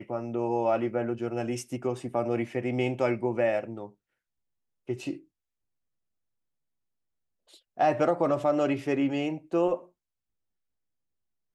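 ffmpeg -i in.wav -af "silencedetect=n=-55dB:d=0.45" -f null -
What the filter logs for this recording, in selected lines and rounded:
silence_start: 3.94
silence_end: 4.87 | silence_duration: 0.93
silence_start: 5.24
silence_end: 7.48 | silence_duration: 2.23
silence_start: 9.89
silence_end: 11.55 | silence_duration: 1.66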